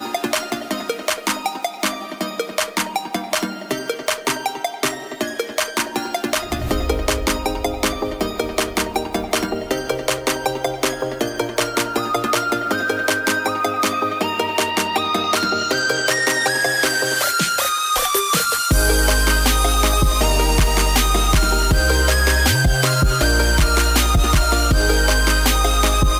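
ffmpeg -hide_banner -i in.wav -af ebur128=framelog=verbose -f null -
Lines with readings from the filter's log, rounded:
Integrated loudness:
  I:         -18.7 LUFS
  Threshold: -28.7 LUFS
Loudness range:
  LRA:         6.9 LU
  Threshold: -38.7 LUFS
  LRA low:   -23.0 LUFS
  LRA high:  -16.1 LUFS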